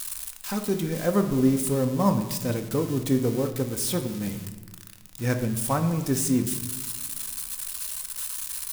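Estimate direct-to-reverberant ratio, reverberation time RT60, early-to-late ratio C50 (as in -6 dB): 5.0 dB, 1.3 s, 9.5 dB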